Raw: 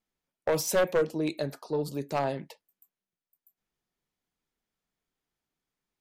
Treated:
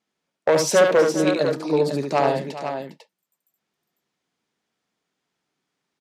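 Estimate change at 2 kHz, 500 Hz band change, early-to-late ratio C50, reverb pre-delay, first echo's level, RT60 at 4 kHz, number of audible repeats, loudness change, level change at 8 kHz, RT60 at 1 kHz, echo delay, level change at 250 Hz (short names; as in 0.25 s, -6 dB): +10.5 dB, +10.0 dB, none, none, -5.0 dB, none, 3, +9.5 dB, +7.5 dB, none, 72 ms, +9.5 dB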